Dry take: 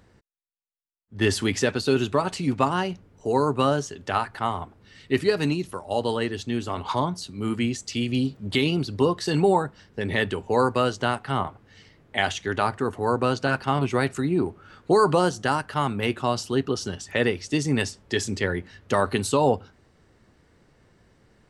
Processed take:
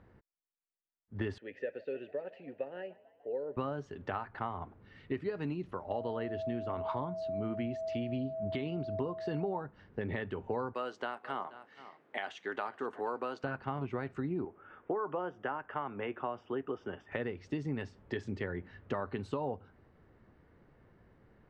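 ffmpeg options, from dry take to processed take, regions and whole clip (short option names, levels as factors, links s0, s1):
-filter_complex "[0:a]asettb=1/sr,asplit=3[s0][s1][s2];[s0]atrim=end=1.384[s3];[s1]atrim=start=1.38:end=3.57,asetpts=PTS-STARTPTS,afade=t=in:d=0.004:c=qsin,afade=t=out:st=2.186:d=0.004:c=qsin,asplit=3[s4][s5][s6];[s4]bandpass=f=530:t=q:w=8,volume=1[s7];[s5]bandpass=f=1840:t=q:w=8,volume=0.501[s8];[s6]bandpass=f=2480:t=q:w=8,volume=0.355[s9];[s7][s8][s9]amix=inputs=3:normalize=0,asplit=6[s10][s11][s12][s13][s14][s15];[s11]adelay=148,afreqshift=46,volume=0.075[s16];[s12]adelay=296,afreqshift=92,volume=0.049[s17];[s13]adelay=444,afreqshift=138,volume=0.0316[s18];[s14]adelay=592,afreqshift=184,volume=0.0207[s19];[s15]adelay=740,afreqshift=230,volume=0.0133[s20];[s10][s16][s17][s18][s19][s20]amix=inputs=6:normalize=0,atrim=end_sample=96579[s21];[s2]atrim=start=3.566[s22];[s3][s21]acrossfade=d=0.004:c1=hsin:c2=qsin[s23];[s23][s22]acrossfade=d=0.004:c1=qsin:c2=hsin,asettb=1/sr,asplit=3[s24][s25][s26];[s24]atrim=end=5.904[s27];[s25]atrim=start=5.9:end=9.6,asetpts=PTS-STARTPTS,afade=t=in:d=0.004:c=qsin,afade=t=out:st=3.696:d=0.004:c=qsin,lowpass=8100,aeval=exprs='val(0)+0.0398*sin(2*PI*650*n/s)':c=same[s28];[s26]atrim=start=9.596[s29];[s27][s28]acrossfade=d=0.004:c1=hsin:c2=qsin[s30];[s30][s29]acrossfade=d=0.004:c1=qsin:c2=hsin,asettb=1/sr,asplit=3[s31][s32][s33];[s31]atrim=end=10.734[s34];[s32]atrim=start=10.73:end=13.44,asetpts=PTS-STARTPTS,afade=t=in:d=0.004:c=qsin,afade=t=out:st=2.706:d=0.004:c=qsin,highpass=240,aemphasis=mode=production:type=bsi,aecho=1:1:479:0.0794,atrim=end_sample=119511[s35];[s33]atrim=start=13.436[s36];[s34][s35]acrossfade=d=0.004:c1=hsin:c2=qsin[s37];[s37][s36]acrossfade=d=0.004:c1=qsin:c2=hsin,asettb=1/sr,asplit=3[s38][s39][s40];[s38]atrim=end=14.454[s41];[s39]atrim=start=14.45:end=17.12,asetpts=PTS-STARTPTS,afade=t=in:d=0.004:c=qsin,afade=t=out:st=2.666:d=0.004:c=qsin,asuperstop=centerf=4200:order=8:qfactor=4.2,acrossover=split=290 3600:gain=0.224 1 0.1[s42][s43][s44];[s42][s43][s44]amix=inputs=3:normalize=0[s45];[s40]atrim=start=17.116[s46];[s41][s45]acrossfade=d=0.004:c1=hsin:c2=qsin[s47];[s47][s46]acrossfade=d=0.004:c1=qsin:c2=hsin,acompressor=threshold=0.0355:ratio=6,lowpass=1900,volume=0.668"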